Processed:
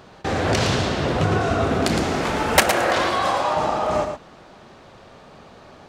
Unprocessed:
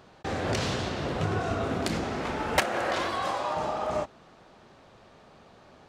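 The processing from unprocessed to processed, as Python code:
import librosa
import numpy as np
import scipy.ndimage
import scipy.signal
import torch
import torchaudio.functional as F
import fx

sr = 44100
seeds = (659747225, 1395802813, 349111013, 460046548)

y = fx.high_shelf(x, sr, hz=7100.0, db=9.5, at=(1.97, 2.85))
y = y + 10.0 ** (-7.5 / 20.0) * np.pad(y, (int(113 * sr / 1000.0), 0))[:len(y)]
y = F.gain(torch.from_numpy(y), 8.0).numpy()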